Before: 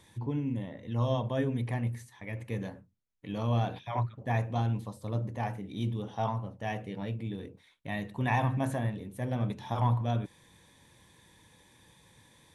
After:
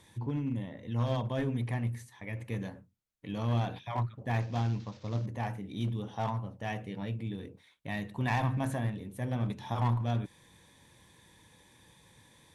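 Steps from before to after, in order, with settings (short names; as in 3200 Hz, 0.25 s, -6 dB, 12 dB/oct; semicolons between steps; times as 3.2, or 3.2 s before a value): 4.4–5.26 CVSD 32 kbps; one-sided clip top -28.5 dBFS, bottom -18 dBFS; dynamic EQ 530 Hz, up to -3 dB, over -44 dBFS, Q 1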